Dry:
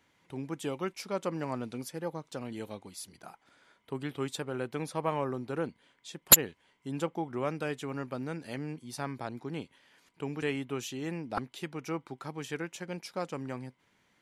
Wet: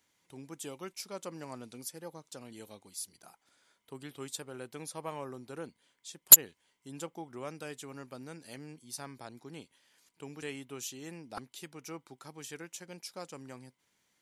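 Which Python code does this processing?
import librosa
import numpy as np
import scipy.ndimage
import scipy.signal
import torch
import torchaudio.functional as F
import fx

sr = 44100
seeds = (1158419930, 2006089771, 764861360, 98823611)

y = fx.bass_treble(x, sr, bass_db=-2, treble_db=13)
y = F.gain(torch.from_numpy(y), -8.5).numpy()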